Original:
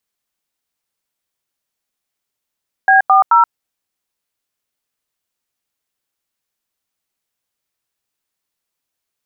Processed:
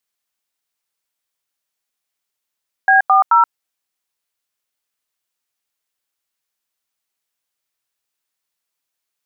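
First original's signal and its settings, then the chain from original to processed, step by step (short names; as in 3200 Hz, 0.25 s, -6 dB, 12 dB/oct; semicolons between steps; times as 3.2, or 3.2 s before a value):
DTMF "B40", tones 0.127 s, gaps 89 ms, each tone -9 dBFS
low shelf 490 Hz -8 dB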